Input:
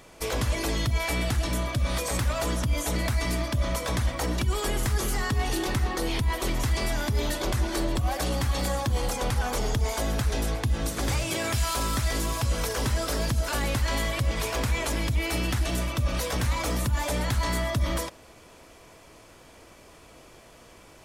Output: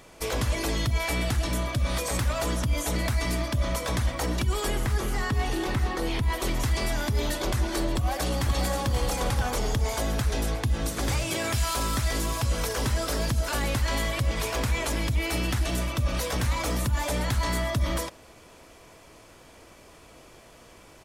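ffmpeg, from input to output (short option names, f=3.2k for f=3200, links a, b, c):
-filter_complex "[0:a]asettb=1/sr,asplit=3[a][b][c];[a]atrim=end=4.754[d];[b]atrim=start=4.75:end=6.25,asetpts=PTS-STARTPTS,afade=t=in:d=0.004:c=qsin,afade=t=out:st=1.496:d=0.004:c=qsin,acrossover=split=3200[e][f];[f]acompressor=threshold=-39dB:ratio=4:attack=1:release=60[g];[e][g]amix=inputs=2:normalize=0[h];[c]atrim=start=6.246[i];[d][h]acrossfade=d=0.004:c1=hsin:c2=qsin[j];[j][i]acrossfade=d=0.004:c1=qsin:c2=hsin,asplit=2[k][l];[l]afade=t=in:st=7.93:d=0.01,afade=t=out:st=8.93:d=0.01,aecho=0:1:530|1060|1590|2120:0.421697|0.126509|0.0379527|0.0113858[m];[k][m]amix=inputs=2:normalize=0"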